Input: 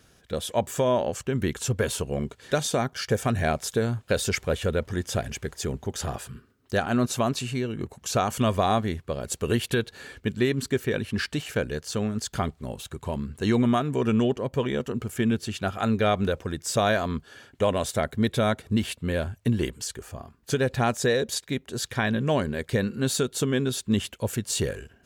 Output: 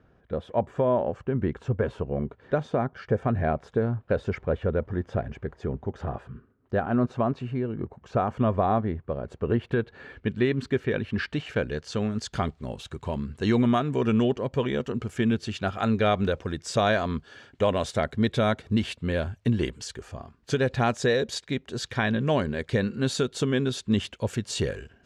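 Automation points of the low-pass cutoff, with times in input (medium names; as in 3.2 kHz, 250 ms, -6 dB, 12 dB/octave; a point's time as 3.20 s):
9.61 s 1.3 kHz
10.35 s 2.9 kHz
11.25 s 2.9 kHz
12.24 s 5.4 kHz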